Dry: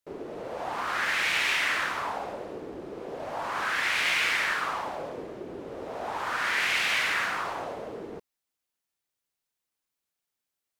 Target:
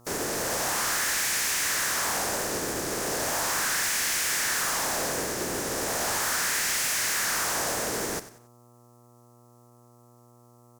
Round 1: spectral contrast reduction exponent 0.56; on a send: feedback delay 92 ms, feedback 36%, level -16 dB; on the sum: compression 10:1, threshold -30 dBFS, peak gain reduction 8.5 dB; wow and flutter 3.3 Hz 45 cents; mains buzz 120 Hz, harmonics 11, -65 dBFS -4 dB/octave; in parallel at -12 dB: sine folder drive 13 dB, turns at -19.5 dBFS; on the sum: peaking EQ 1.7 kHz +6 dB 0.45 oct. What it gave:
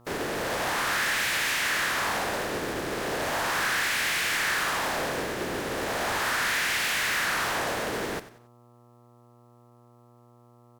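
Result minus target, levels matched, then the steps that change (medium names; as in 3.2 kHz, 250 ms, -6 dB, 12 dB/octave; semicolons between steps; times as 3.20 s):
8 kHz band -7.5 dB
add after compression: resonant high shelf 4.6 kHz +9.5 dB, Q 1.5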